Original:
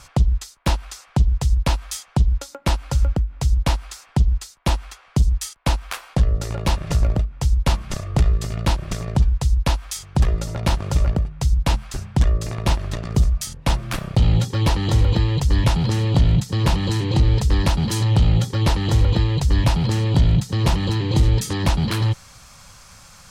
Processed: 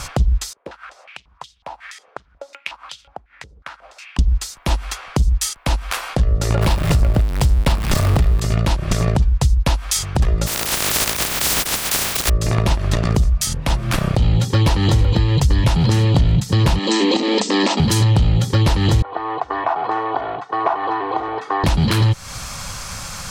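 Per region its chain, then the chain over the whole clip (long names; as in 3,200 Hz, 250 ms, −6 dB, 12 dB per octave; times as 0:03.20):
0:00.53–0:04.19: high-shelf EQ 2,200 Hz +7 dB + downward compressor 5 to 1, threshold −32 dBFS + band-pass on a step sequencer 5.5 Hz 460–3,300 Hz
0:06.61–0:08.40: converter with a step at zero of −25.5 dBFS + parametric band 6,300 Hz −4.5 dB 0.36 octaves
0:10.46–0:12.28: compressing power law on the bin magnitudes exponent 0.13 + downward compressor 5 to 1, threshold −30 dBFS
0:16.79–0:17.80: linear-phase brick-wall band-pass 200–8,500 Hz + notch filter 1,500 Hz, Q 5.8
0:19.02–0:21.64: flat-topped band-pass 920 Hz, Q 1.3 + comb filter 2.7 ms, depth 67%
whole clip: downward compressor 6 to 1, threshold −28 dBFS; boost into a limiter +20.5 dB; level −5 dB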